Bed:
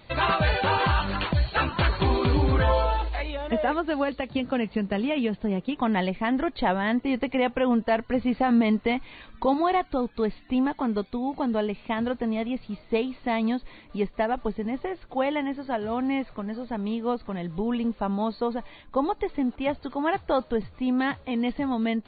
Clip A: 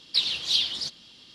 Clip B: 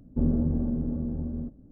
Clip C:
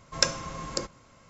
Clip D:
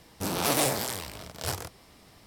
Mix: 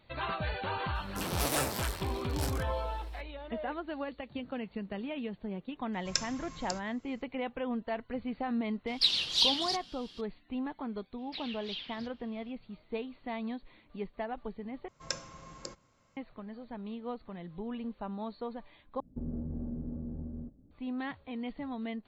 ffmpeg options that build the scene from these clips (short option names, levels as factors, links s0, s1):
-filter_complex "[3:a]asplit=2[s0][s1];[1:a]asplit=2[s2][s3];[0:a]volume=0.251[s4];[s0]equalizer=f=530:w=0.49:g=-11.5[s5];[s3]lowpass=f=2300:t=q:w=1.8[s6];[2:a]alimiter=limit=0.0891:level=0:latency=1:release=72[s7];[s4]asplit=3[s8][s9][s10];[s8]atrim=end=14.884[s11];[s1]atrim=end=1.29,asetpts=PTS-STARTPTS,volume=0.237[s12];[s9]atrim=start=16.166:end=19.004[s13];[s7]atrim=end=1.71,asetpts=PTS-STARTPTS,volume=0.376[s14];[s10]atrim=start=20.706[s15];[4:a]atrim=end=2.26,asetpts=PTS-STARTPTS,volume=0.473,afade=t=in:d=0.004:c=hsin,afade=t=out:st=2.256:d=0.004:c=hsin,adelay=950[s16];[s5]atrim=end=1.29,asetpts=PTS-STARTPTS,volume=0.473,afade=t=in:d=0.004:c=hsin,afade=t=out:st=1.286:d=0.004:c=hsin,adelay=261513S[s17];[s2]atrim=end=1.34,asetpts=PTS-STARTPTS,volume=0.75,afade=t=in:d=0.004:c=hsin,afade=t=out:st=1.336:d=0.004:c=hsin,adelay=8870[s18];[s6]atrim=end=1.34,asetpts=PTS-STARTPTS,volume=0.211,afade=t=in:d=0.004:c=hsin,afade=t=out:st=1.336:d=0.004:c=hsin,adelay=11180[s19];[s11][s12]acrossfade=d=0.004:c1=hsin:c2=hsin[s20];[s20][s13]acrossfade=d=0.004:c1=hsin:c2=hsin[s21];[s21][s14]acrossfade=d=0.004:c1=hsin:c2=hsin[s22];[s22][s15]acrossfade=d=0.004:c1=hsin:c2=hsin[s23];[s23][s16][s17][s18][s19]amix=inputs=5:normalize=0"